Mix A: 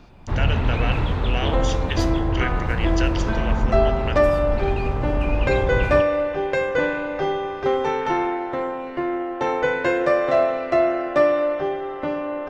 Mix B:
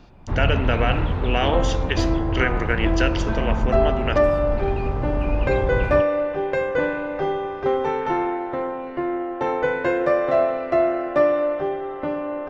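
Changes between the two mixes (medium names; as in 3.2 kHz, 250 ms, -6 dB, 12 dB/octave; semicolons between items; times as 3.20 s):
speech +7.5 dB; first sound: send off; master: add treble shelf 2.9 kHz -9.5 dB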